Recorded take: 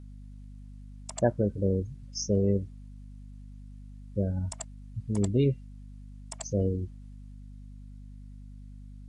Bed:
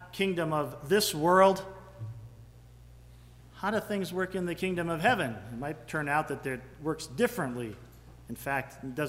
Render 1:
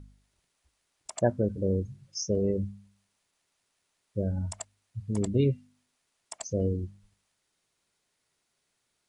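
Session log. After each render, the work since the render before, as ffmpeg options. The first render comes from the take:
ffmpeg -i in.wav -af "bandreject=frequency=50:width_type=h:width=4,bandreject=frequency=100:width_type=h:width=4,bandreject=frequency=150:width_type=h:width=4,bandreject=frequency=200:width_type=h:width=4,bandreject=frequency=250:width_type=h:width=4" out.wav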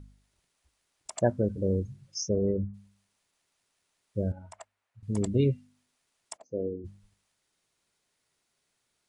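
ffmpeg -i in.wav -filter_complex "[0:a]asplit=3[link_01][link_02][link_03];[link_01]afade=type=out:start_time=2.28:duration=0.02[link_04];[link_02]lowpass=frequency=1700:width=0.5412,lowpass=frequency=1700:width=1.3066,afade=type=in:start_time=2.28:duration=0.02,afade=type=out:start_time=2.73:duration=0.02[link_05];[link_03]afade=type=in:start_time=2.73:duration=0.02[link_06];[link_04][link_05][link_06]amix=inputs=3:normalize=0,asettb=1/sr,asplit=3[link_07][link_08][link_09];[link_07]atrim=end=4.324[link_10];[link_08]atrim=start=4.32:end=5.03,asetpts=PTS-STARTPTS,afade=type=in:duration=0.004:curve=qsin,afade=type=out:start_time=0.706:duration=0.004:curve=qsin,acrossover=split=450 2500:gain=0.141 1 0.2[link_11][link_12][link_13];[link_11][link_12][link_13]amix=inputs=3:normalize=0[link_14];[link_09]atrim=start=5.026[link_15];[link_10][link_14]acrossfade=duration=0.004:curve1=hsin:curve2=qsin[link_16];[link_16][link_15]acrossfade=duration=0.004:curve1=qsin:curve2=hsin,asplit=3[link_17][link_18][link_19];[link_17]afade=type=out:start_time=6.36:duration=0.02[link_20];[link_18]bandpass=frequency=400:width_type=q:width=1.6,afade=type=in:start_time=6.36:duration=0.02,afade=type=out:start_time=6.84:duration=0.02[link_21];[link_19]afade=type=in:start_time=6.84:duration=0.02[link_22];[link_20][link_21][link_22]amix=inputs=3:normalize=0" out.wav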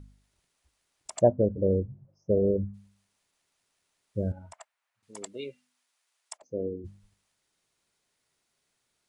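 ffmpeg -i in.wav -filter_complex "[0:a]asplit=3[link_01][link_02][link_03];[link_01]afade=type=out:start_time=1.22:duration=0.02[link_04];[link_02]lowpass=frequency=640:width_type=q:width=2,afade=type=in:start_time=1.22:duration=0.02,afade=type=out:start_time=2.56:duration=0.02[link_05];[link_03]afade=type=in:start_time=2.56:duration=0.02[link_06];[link_04][link_05][link_06]amix=inputs=3:normalize=0,asettb=1/sr,asplit=3[link_07][link_08][link_09];[link_07]atrim=end=4.534[link_10];[link_08]atrim=start=4.53:end=6.42,asetpts=PTS-STARTPTS,afade=type=in:duration=0.004:curve=qsin,afade=type=out:start_time=1.886:duration=0.004:curve=qsin,highpass=740[link_11];[link_09]atrim=start=6.416[link_12];[link_10][link_11]acrossfade=duration=0.004:curve1=hsin:curve2=qsin[link_13];[link_13][link_12]acrossfade=duration=0.004:curve1=qsin:curve2=hsin" out.wav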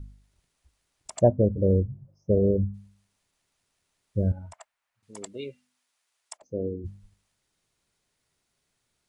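ffmpeg -i in.wav -af "lowshelf=frequency=160:gain=10" out.wav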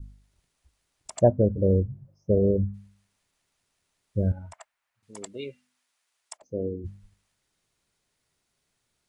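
ffmpeg -i in.wav -af "adynamicequalizer=threshold=0.00447:dfrequency=1800:dqfactor=1:tfrequency=1800:tqfactor=1:attack=5:release=100:ratio=0.375:range=2.5:mode=boostabove:tftype=bell" out.wav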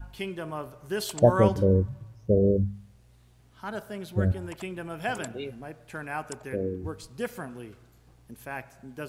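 ffmpeg -i in.wav -i bed.wav -filter_complex "[1:a]volume=-5.5dB[link_01];[0:a][link_01]amix=inputs=2:normalize=0" out.wav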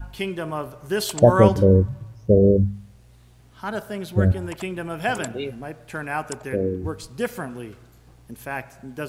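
ffmpeg -i in.wav -af "volume=6.5dB,alimiter=limit=-2dB:level=0:latency=1" out.wav

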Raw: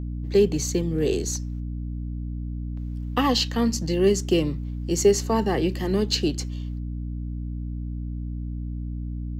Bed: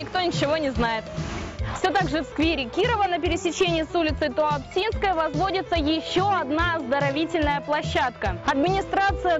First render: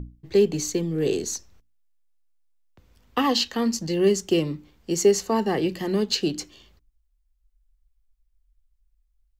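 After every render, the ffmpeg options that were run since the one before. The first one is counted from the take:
ffmpeg -i in.wav -af "bandreject=frequency=60:width_type=h:width=6,bandreject=frequency=120:width_type=h:width=6,bandreject=frequency=180:width_type=h:width=6,bandreject=frequency=240:width_type=h:width=6,bandreject=frequency=300:width_type=h:width=6" out.wav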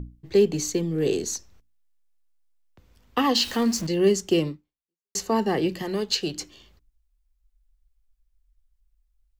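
ffmpeg -i in.wav -filter_complex "[0:a]asettb=1/sr,asplit=3[link_01][link_02][link_03];[link_01]atrim=end=3.354[link_04];[link_02]atrim=start=3.35:end=3.87,asetpts=PTS-STARTPTS,afade=type=in:duration=0.004:curve=qsin,afade=type=out:start_time=0.516:duration=0.004:curve=qsin,aeval=exprs='val(0)+0.5*0.0224*sgn(val(0))':channel_layout=same[link_05];[link_03]atrim=start=3.866[link_06];[link_04][link_05]acrossfade=duration=0.004:curve1=hsin:curve2=qsin[link_07];[link_07][link_06]acrossfade=duration=0.004:curve1=qsin:curve2=hsin,asettb=1/sr,asplit=3[link_08][link_09][link_10];[link_08]atrim=end=5.824[link_11];[link_09]atrim=start=5.82:end=6.41,asetpts=PTS-STARTPTS,afade=type=in:duration=0.004:curve=qsin,afade=type=out:start_time=0.586:duration=0.004:curve=qsin,equalizer=frequency=250:width=1.5:gain=-9[link_12];[link_10]atrim=start=6.406[link_13];[link_11][link_12]acrossfade=duration=0.004:curve1=hsin:curve2=qsin[link_14];[link_14][link_13]acrossfade=duration=0.004:curve1=qsin:curve2=hsin,asplit=2[link_15][link_16];[link_15]atrim=end=5.15,asetpts=PTS-STARTPTS,afade=type=out:start_time=4.48:duration=0.67:curve=exp[link_17];[link_16]atrim=start=5.15,asetpts=PTS-STARTPTS,afade=type=in:duration=0.004:curve=hsin[link_18];[link_17][link_18]concat=n=2:v=0:a=1" out.wav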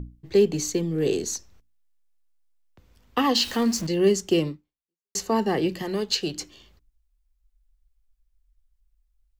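ffmpeg -i in.wav -af anull out.wav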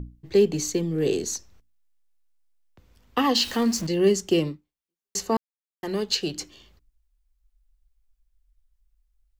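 ffmpeg -i in.wav -filter_complex "[0:a]asplit=3[link_01][link_02][link_03];[link_01]atrim=end=5.37,asetpts=PTS-STARTPTS,afade=type=out:start_time=5.366:duration=0.004:curve=hsin[link_04];[link_02]atrim=start=5.37:end=5.83,asetpts=PTS-STARTPTS,volume=0[link_05];[link_03]atrim=start=5.83,asetpts=PTS-STARTPTS,afade=type=in:duration=0.004:curve=hsin[link_06];[link_04][link_05][link_06]concat=n=3:v=0:a=1" out.wav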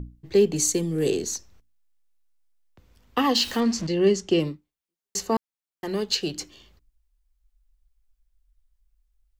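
ffmpeg -i in.wav -filter_complex "[0:a]asettb=1/sr,asplit=3[link_01][link_02][link_03];[link_01]atrim=end=0.564[link_04];[link_02]atrim=start=0.56:end=1.11,asetpts=PTS-STARTPTS,afade=type=in:duration=0.004:curve=qsin,afade=type=out:start_time=0.546:duration=0.004:curve=qsin,equalizer=frequency=9200:width=1.2:gain=14[link_05];[link_03]atrim=start=1.106[link_06];[link_04][link_05]acrossfade=duration=0.004:curve1=hsin:curve2=qsin[link_07];[link_07][link_06]acrossfade=duration=0.004:curve1=qsin:curve2=hsin,asettb=1/sr,asplit=3[link_08][link_09][link_10];[link_08]atrim=end=3.604[link_11];[link_09]atrim=start=3.6:end=4.4,asetpts=PTS-STARTPTS,afade=type=in:duration=0.004:curve=qsin,afade=type=out:start_time=0.796:duration=0.004:curve=qsin,lowpass=6200[link_12];[link_10]atrim=start=4.396[link_13];[link_11][link_12]acrossfade=duration=0.004:curve1=hsin:curve2=qsin[link_14];[link_14][link_13]acrossfade=duration=0.004:curve1=qsin:curve2=hsin" out.wav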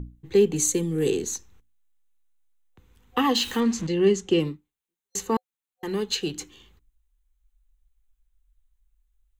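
ffmpeg -i in.wav -af "superequalizer=8b=0.355:14b=0.398" out.wav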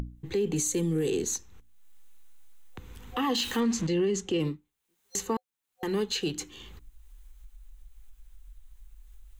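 ffmpeg -i in.wav -af "alimiter=limit=-20dB:level=0:latency=1:release=27,acompressor=mode=upward:threshold=-32dB:ratio=2.5" out.wav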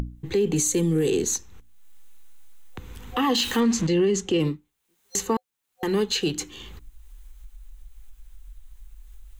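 ffmpeg -i in.wav -af "volume=5.5dB" out.wav

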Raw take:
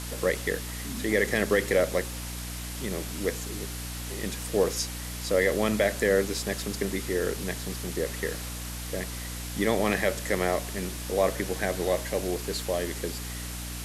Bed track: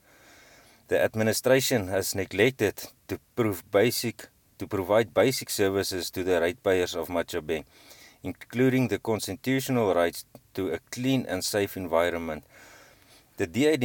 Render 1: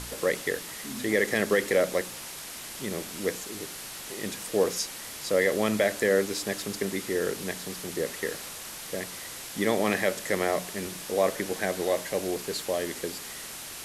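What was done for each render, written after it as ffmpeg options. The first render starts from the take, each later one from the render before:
ffmpeg -i in.wav -af "bandreject=frequency=60:width_type=h:width=4,bandreject=frequency=120:width_type=h:width=4,bandreject=frequency=180:width_type=h:width=4,bandreject=frequency=240:width_type=h:width=4,bandreject=frequency=300:width_type=h:width=4" out.wav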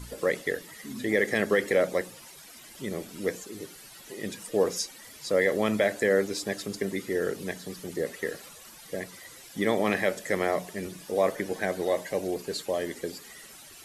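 ffmpeg -i in.wav -af "afftdn=noise_reduction=13:noise_floor=-40" out.wav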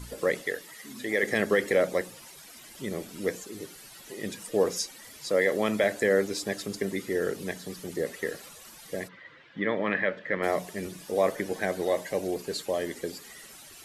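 ffmpeg -i in.wav -filter_complex "[0:a]asettb=1/sr,asplit=3[link_01][link_02][link_03];[link_01]atrim=end=0.464[link_04];[link_02]atrim=start=0.46:end=1.23,asetpts=PTS-STARTPTS,afade=type=in:duration=0.004:curve=qsin,afade=type=out:start_time=0.766:duration=0.004:curve=qsin,lowshelf=frequency=290:gain=-10.5[link_05];[link_03]atrim=start=1.226[link_06];[link_04][link_05]acrossfade=duration=0.004:curve1=hsin:curve2=qsin[link_07];[link_07][link_06]acrossfade=duration=0.004:curve1=qsin:curve2=hsin,asettb=1/sr,asplit=3[link_08][link_09][link_10];[link_08]atrim=end=5.284[link_11];[link_09]atrim=start=5.28:end=5.84,asetpts=PTS-STARTPTS,afade=type=in:duration=0.004:curve=qsin,afade=type=out:start_time=0.556:duration=0.004:curve=qsin,highpass=frequency=150:poles=1[link_12];[link_10]atrim=start=5.836[link_13];[link_11][link_12]acrossfade=duration=0.004:curve1=hsin:curve2=qsin[link_14];[link_14][link_13]acrossfade=duration=0.004:curve1=qsin:curve2=hsin,asplit=3[link_15][link_16][link_17];[link_15]afade=type=out:start_time=9.07:duration=0.02[link_18];[link_16]highpass=100,equalizer=frequency=100:width_type=q:width=4:gain=-5,equalizer=frequency=230:width_type=q:width=4:gain=-4,equalizer=frequency=380:width_type=q:width=4:gain=-6,equalizer=frequency=750:width_type=q:width=4:gain=-9,equalizer=frequency=1700:width_type=q:width=4:gain=4,equalizer=frequency=2500:width_type=q:width=4:gain=-3,lowpass=frequency=3000:width=0.5412,lowpass=frequency=3000:width=1.3066,afade=type=in:start_time=9.07:duration=0.02,afade=type=out:start_time=10.42:duration=0.02[link_19];[link_17]afade=type=in:start_time=10.42:duration=0.02[link_20];[link_18][link_19][link_20]amix=inputs=3:normalize=0" out.wav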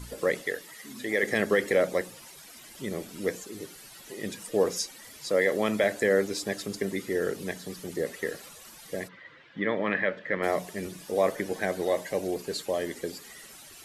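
ffmpeg -i in.wav -af anull out.wav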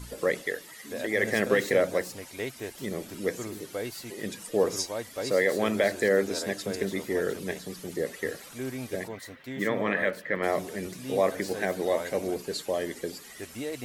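ffmpeg -i in.wav -i bed.wav -filter_complex "[1:a]volume=-12.5dB[link_01];[0:a][link_01]amix=inputs=2:normalize=0" out.wav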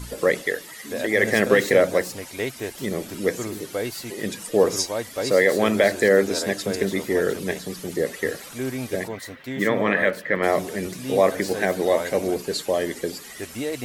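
ffmpeg -i in.wav -af "volume=6.5dB" out.wav

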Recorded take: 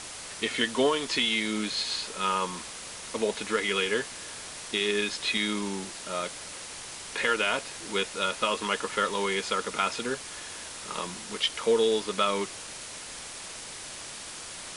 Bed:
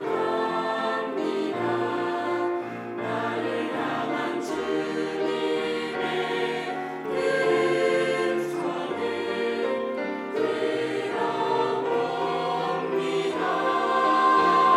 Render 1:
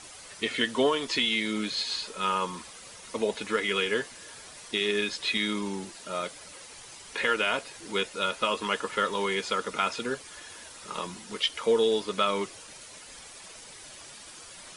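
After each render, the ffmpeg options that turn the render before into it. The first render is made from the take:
ffmpeg -i in.wav -af "afftdn=noise_reduction=9:noise_floor=-41" out.wav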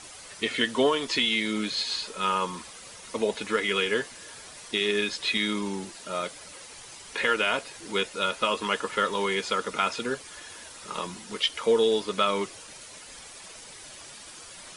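ffmpeg -i in.wav -af "volume=1.5dB" out.wav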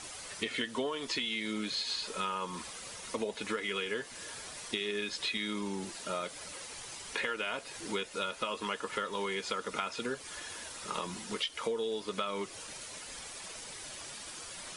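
ffmpeg -i in.wav -af "acompressor=threshold=-32dB:ratio=6" out.wav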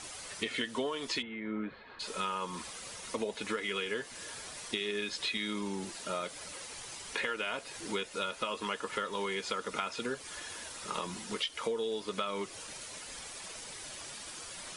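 ffmpeg -i in.wav -filter_complex "[0:a]asplit=3[link_01][link_02][link_03];[link_01]afade=type=out:start_time=1.21:duration=0.02[link_04];[link_02]lowpass=frequency=1800:width=0.5412,lowpass=frequency=1800:width=1.3066,afade=type=in:start_time=1.21:duration=0.02,afade=type=out:start_time=1.99:duration=0.02[link_05];[link_03]afade=type=in:start_time=1.99:duration=0.02[link_06];[link_04][link_05][link_06]amix=inputs=3:normalize=0" out.wav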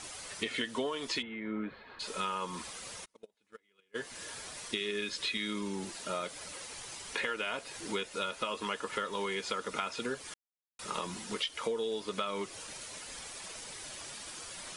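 ffmpeg -i in.wav -filter_complex "[0:a]asplit=3[link_01][link_02][link_03];[link_01]afade=type=out:start_time=3.04:duration=0.02[link_04];[link_02]agate=range=-38dB:threshold=-30dB:ratio=16:release=100:detection=peak,afade=type=in:start_time=3.04:duration=0.02,afade=type=out:start_time=3.94:duration=0.02[link_05];[link_03]afade=type=in:start_time=3.94:duration=0.02[link_06];[link_04][link_05][link_06]amix=inputs=3:normalize=0,asettb=1/sr,asplit=3[link_07][link_08][link_09];[link_07]atrim=end=4.684[link_10];[link_08]atrim=start=4.68:end=5.75,asetpts=PTS-STARTPTS,afade=type=in:duration=0.004:curve=qsin,afade=type=out:start_time=1.066:duration=0.004:curve=qsin,equalizer=frequency=780:width_type=o:width=0.31:gain=-9.5[link_11];[link_09]atrim=start=5.746[link_12];[link_10][link_11]acrossfade=duration=0.004:curve1=hsin:curve2=qsin[link_13];[link_13][link_12]acrossfade=duration=0.004:curve1=qsin:curve2=hsin,asplit=3[link_14][link_15][link_16];[link_14]atrim=end=10.34,asetpts=PTS-STARTPTS,afade=type=out:start_time=10.336:duration=0.004:curve=hsin[link_17];[link_15]atrim=start=10.34:end=10.79,asetpts=PTS-STARTPTS,volume=0[link_18];[link_16]atrim=start=10.79,asetpts=PTS-STARTPTS,afade=type=in:duration=0.004:curve=hsin[link_19];[link_17][link_18][link_19]concat=n=3:v=0:a=1" out.wav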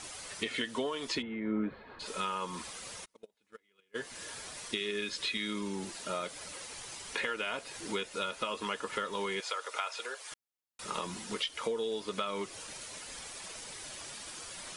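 ffmpeg -i in.wav -filter_complex "[0:a]asettb=1/sr,asplit=3[link_01][link_02][link_03];[link_01]atrim=end=1.154[link_04];[link_02]atrim=start=1.15:end=2.06,asetpts=PTS-STARTPTS,afade=type=in:duration=0.004:curve=qsin,afade=type=out:start_time=0.906:duration=0.004:curve=qsin,tiltshelf=frequency=1300:gain=5[link_05];[link_03]atrim=start=2.056[link_06];[link_04][link_05]acrossfade=duration=0.004:curve1=hsin:curve2=qsin[link_07];[link_07][link_06]acrossfade=duration=0.004:curve1=qsin:curve2=hsin,asettb=1/sr,asplit=3[link_08][link_09][link_10];[link_08]atrim=end=9.404[link_11];[link_09]atrim=start=9.4:end=10.32,asetpts=PTS-STARTPTS,afade=type=in:duration=0.004:curve=qsin,afade=type=out:start_time=0.916:duration=0.004:curve=qsin,highpass=frequency=520:width=0.5412,highpass=frequency=520:width=1.3066[link_12];[link_10]atrim=start=10.316[link_13];[link_11][link_12]acrossfade=duration=0.004:curve1=hsin:curve2=qsin[link_14];[link_14][link_13]acrossfade=duration=0.004:curve1=qsin:curve2=hsin" out.wav

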